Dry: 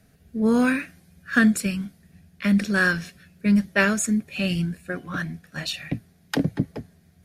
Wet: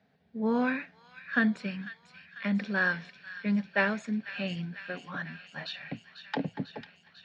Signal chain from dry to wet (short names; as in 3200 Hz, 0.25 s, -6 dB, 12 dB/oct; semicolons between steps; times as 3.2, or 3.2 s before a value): speaker cabinet 210–3900 Hz, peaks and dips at 330 Hz -9 dB, 870 Hz +8 dB, 1300 Hz -4 dB, 2700 Hz -4 dB; thin delay 0.496 s, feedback 72%, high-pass 2100 Hz, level -10 dB; gain -5.5 dB